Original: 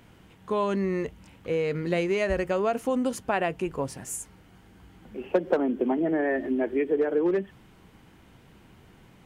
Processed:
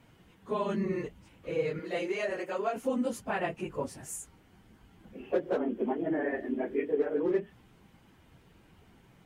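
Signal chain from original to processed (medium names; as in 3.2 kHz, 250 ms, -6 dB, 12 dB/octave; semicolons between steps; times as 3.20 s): phase randomisation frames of 50 ms; 1.79–2.76 s: high-pass 330 Hz 12 dB/octave; trim -5.5 dB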